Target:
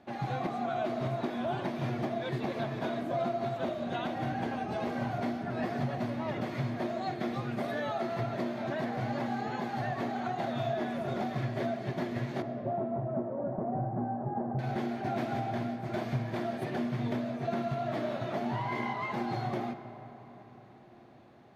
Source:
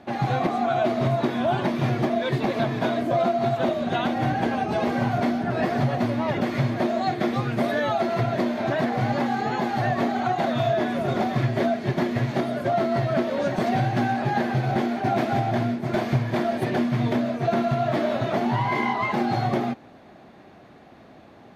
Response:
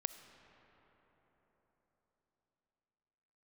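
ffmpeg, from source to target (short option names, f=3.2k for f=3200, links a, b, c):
-filter_complex "[0:a]asettb=1/sr,asplit=3[a][b][c];[a]atrim=end=12.424[d];[b]atrim=start=12.42:end=14.59,asetpts=PTS-STARTPTS,afade=t=in:d=0.004:c=qsin,afade=t=out:st=2.166:d=0.004:c=qsin,lowpass=f=1k:w=0.5412,lowpass=f=1k:w=1.3066[e];[c]atrim=start=14.586[f];[d][e]acrossfade=d=0.004:c1=hsin:c2=qsin[g];[g][f]acrossfade=d=0.004:c1=qsin:c2=hsin[h];[1:a]atrim=start_sample=2205[i];[h][i]afir=irnorm=-1:irlink=0,volume=-9dB"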